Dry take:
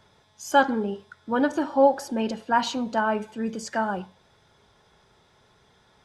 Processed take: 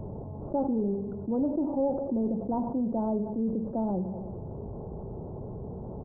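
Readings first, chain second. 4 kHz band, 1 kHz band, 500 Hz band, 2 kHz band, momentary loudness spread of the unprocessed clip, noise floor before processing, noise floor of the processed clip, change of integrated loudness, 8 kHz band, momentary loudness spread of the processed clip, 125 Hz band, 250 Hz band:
under -40 dB, -13.5 dB, -5.5 dB, under -40 dB, 11 LU, -62 dBFS, -40 dBFS, -6.5 dB, under -40 dB, 11 LU, +7.0 dB, 0.0 dB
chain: block-companded coder 3-bit; Gaussian low-pass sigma 15 samples; feedback delay 96 ms, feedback 52%, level -22 dB; level flattener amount 70%; trim -5 dB

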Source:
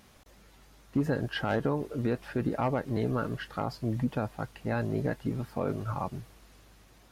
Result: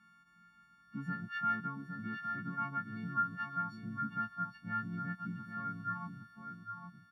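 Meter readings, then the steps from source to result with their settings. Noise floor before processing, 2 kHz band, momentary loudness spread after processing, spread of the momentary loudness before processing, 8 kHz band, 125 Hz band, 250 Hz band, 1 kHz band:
-58 dBFS, -1.0 dB, 12 LU, 6 LU, no reading, -12.0 dB, -10.5 dB, 0.0 dB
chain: partials quantised in pitch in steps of 4 st; two resonant band-passes 510 Hz, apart 2.9 oct; delay 812 ms -6.5 dB; trim +1 dB

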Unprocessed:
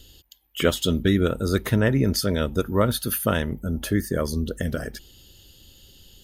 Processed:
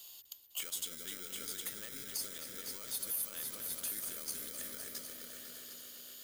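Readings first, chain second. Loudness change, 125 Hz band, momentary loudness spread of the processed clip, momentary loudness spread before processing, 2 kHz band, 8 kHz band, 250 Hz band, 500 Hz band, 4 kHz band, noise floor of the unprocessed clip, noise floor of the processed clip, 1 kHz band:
-16.0 dB, -37.5 dB, 11 LU, 8 LU, -18.5 dB, -4.0 dB, -31.5 dB, -28.5 dB, -12.5 dB, -54 dBFS, -54 dBFS, -23.5 dB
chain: delay with an opening low-pass 118 ms, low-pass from 200 Hz, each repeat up 1 oct, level -3 dB; in parallel at -4 dB: sample-rate reducer 1.8 kHz, jitter 0%; on the sum: compression 2:1, threshold -33 dBFS, peak gain reduction 12 dB; differentiator; on a send: multi-head delay 252 ms, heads all three, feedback 53%, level -12.5 dB; on the sum: dynamic bell 8.2 kHz, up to +4 dB, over -49 dBFS, Q 1.2; peak limiter -28 dBFS, peak gain reduction 11.5 dB; trim +2 dB

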